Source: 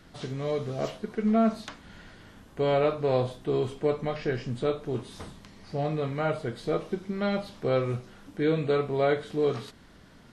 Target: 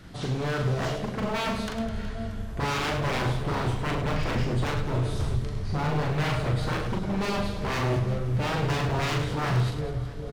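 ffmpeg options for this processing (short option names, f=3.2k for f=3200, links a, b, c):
-filter_complex "[0:a]asubboost=boost=5.5:cutoff=110,asplit=2[a][b];[b]adelay=404,lowpass=f=2k:p=1,volume=-15dB,asplit=2[c][d];[d]adelay=404,lowpass=f=2k:p=1,volume=0.53,asplit=2[e][f];[f]adelay=404,lowpass=f=2k:p=1,volume=0.53,asplit=2[g][h];[h]adelay=404,lowpass=f=2k:p=1,volume=0.53,asplit=2[i][j];[j]adelay=404,lowpass=f=2k:p=1,volume=0.53[k];[c][e][g][i][k]amix=inputs=5:normalize=0[l];[a][l]amix=inputs=2:normalize=0,aeval=exprs='0.0355*(abs(mod(val(0)/0.0355+3,4)-2)-1)':c=same,equalizer=f=81:w=0.72:g=7,asplit=2[m][n];[n]aecho=0:1:40|104|206.4|370.2|632.4:0.631|0.398|0.251|0.158|0.1[o];[m][o]amix=inputs=2:normalize=0,volume=3.5dB"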